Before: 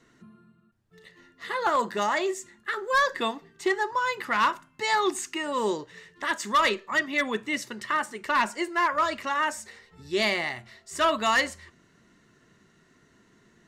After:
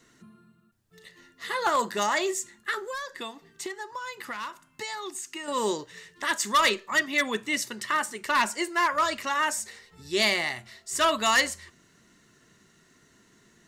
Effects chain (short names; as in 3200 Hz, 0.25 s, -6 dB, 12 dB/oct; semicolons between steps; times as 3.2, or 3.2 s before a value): high shelf 4100 Hz +11 dB; 2.78–5.48 compressor 6:1, threshold -33 dBFS, peak gain reduction 14.5 dB; gain -1 dB